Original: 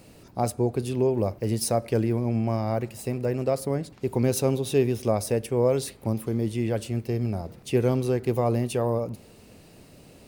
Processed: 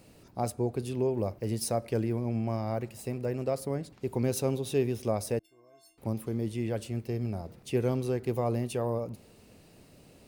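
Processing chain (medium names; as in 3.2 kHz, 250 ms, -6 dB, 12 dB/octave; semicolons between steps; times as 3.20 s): 5.39–5.98 s: inharmonic resonator 320 Hz, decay 0.81 s, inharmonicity 0.03; trim -5.5 dB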